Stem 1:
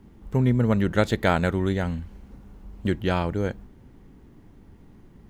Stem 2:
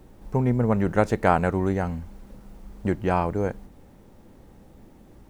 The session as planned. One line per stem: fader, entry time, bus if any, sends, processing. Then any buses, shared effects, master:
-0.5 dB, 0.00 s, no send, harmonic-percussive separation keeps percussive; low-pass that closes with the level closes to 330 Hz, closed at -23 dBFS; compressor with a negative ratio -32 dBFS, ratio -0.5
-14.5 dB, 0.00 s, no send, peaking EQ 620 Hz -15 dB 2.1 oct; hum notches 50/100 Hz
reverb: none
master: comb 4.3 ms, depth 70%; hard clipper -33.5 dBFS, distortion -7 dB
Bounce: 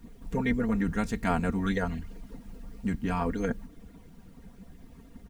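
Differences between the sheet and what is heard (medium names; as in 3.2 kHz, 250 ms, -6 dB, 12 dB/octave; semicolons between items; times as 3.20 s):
stem 2 -14.5 dB -> -2.5 dB; master: missing hard clipper -33.5 dBFS, distortion -7 dB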